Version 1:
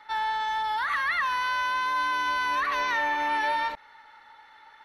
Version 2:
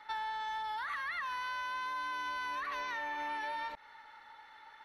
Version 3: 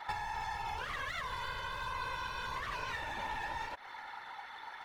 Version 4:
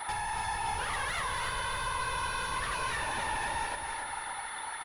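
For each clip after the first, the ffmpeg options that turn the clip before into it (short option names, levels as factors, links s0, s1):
-af "acompressor=threshold=0.0224:ratio=6,volume=0.708"
-af "aeval=exprs='clip(val(0),-1,0.00376)':c=same,acompressor=threshold=0.00631:ratio=4,afftfilt=real='hypot(re,im)*cos(2*PI*random(0))':imag='hypot(re,im)*sin(2*PI*random(1))':win_size=512:overlap=0.75,volume=5.01"
-af "asoftclip=type=tanh:threshold=0.0141,aecho=1:1:279|558|837|1116|1395|1674:0.501|0.241|0.115|0.0554|0.0266|0.0128,aeval=exprs='val(0)+0.00251*sin(2*PI*9800*n/s)':c=same,volume=2.37"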